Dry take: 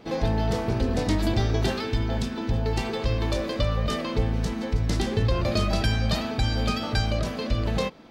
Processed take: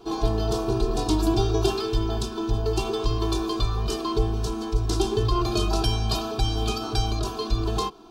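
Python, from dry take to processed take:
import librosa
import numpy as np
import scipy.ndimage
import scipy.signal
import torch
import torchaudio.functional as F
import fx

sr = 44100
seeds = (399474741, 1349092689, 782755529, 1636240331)

y = fx.fixed_phaser(x, sr, hz=390.0, stages=8)
y = y + 0.97 * np.pad(y, (int(2.9 * sr / 1000.0), 0))[:len(y)]
y = y * librosa.db_to_amplitude(2.5)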